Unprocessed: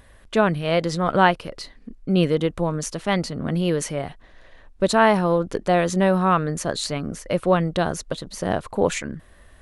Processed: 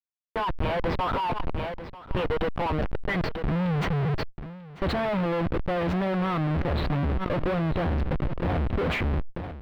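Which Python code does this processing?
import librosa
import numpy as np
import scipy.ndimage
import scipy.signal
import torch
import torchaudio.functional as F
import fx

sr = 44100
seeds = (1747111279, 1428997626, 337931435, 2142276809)

y = fx.env_lowpass(x, sr, base_hz=500.0, full_db=-17.0)
y = fx.noise_reduce_blind(y, sr, reduce_db=7)
y = fx.filter_sweep_highpass(y, sr, from_hz=960.0, to_hz=73.0, start_s=2.5, end_s=4.74, q=7.1)
y = fx.rider(y, sr, range_db=3, speed_s=2.0)
y = fx.spec_box(y, sr, start_s=2.94, length_s=1.41, low_hz=210.0, high_hz=1500.0, gain_db=-23)
y = fx.schmitt(y, sr, flips_db=-33.5)
y = fx.air_absorb(y, sr, metres=430.0)
y = y + 10.0 ** (-18.5 / 20.0) * np.pad(y, (int(942 * sr / 1000.0), 0))[:len(y)]
y = fx.sustainer(y, sr, db_per_s=39.0)
y = y * 10.0 ** (-4.0 / 20.0)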